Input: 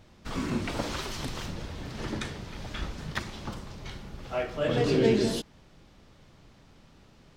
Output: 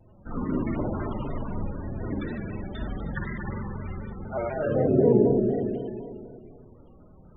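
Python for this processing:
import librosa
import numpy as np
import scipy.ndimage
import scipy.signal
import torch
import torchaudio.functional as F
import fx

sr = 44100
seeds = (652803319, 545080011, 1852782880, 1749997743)

y = fx.high_shelf(x, sr, hz=4600.0, db=-6.0)
y = fx.rev_spring(y, sr, rt60_s=2.5, pass_ms=(45, 55), chirp_ms=40, drr_db=-3.5)
y = fx.spec_topn(y, sr, count=32)
y = fx.env_lowpass_down(y, sr, base_hz=820.0, full_db=-18.0)
y = fx.vibrato_shape(y, sr, shape='square', rate_hz=4.0, depth_cents=100.0)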